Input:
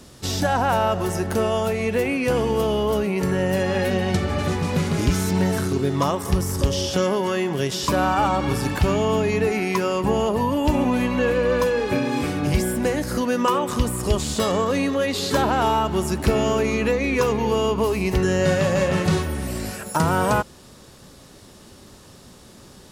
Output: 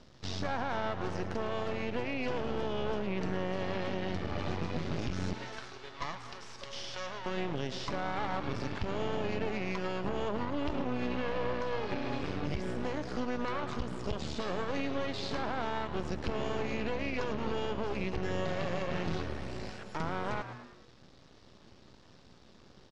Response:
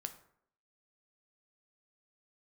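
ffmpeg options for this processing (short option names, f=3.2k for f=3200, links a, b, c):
-filter_complex "[0:a]asettb=1/sr,asplit=3[a][b][c];[a]atrim=end=5.334[d];[b]atrim=start=5.33:end=7.26,asetpts=PTS-STARTPTS,afade=t=in:d=0.004:c=qsin,afade=t=out:st=1.926:d=0.004:c=qsin,highpass=870[e];[c]atrim=start=7.256[f];[d][e]acrossfade=d=0.004:c1=hsin:c2=qsin[g];[g][f]acrossfade=d=0.004:c1=qsin:c2=hsin,aeval=exprs='max(val(0),0)':c=same,lowpass=f=5.3k:w=0.5412,lowpass=f=5.3k:w=1.3066,asplit=5[h][i][j][k][l];[i]adelay=108,afreqshift=120,volume=-14dB[m];[j]adelay=216,afreqshift=240,volume=-21.1dB[n];[k]adelay=324,afreqshift=360,volume=-28.3dB[o];[l]adelay=432,afreqshift=480,volume=-35.4dB[p];[h][m][n][o][p]amix=inputs=5:normalize=0,alimiter=limit=-14.5dB:level=0:latency=1:release=140,volume=-7.5dB"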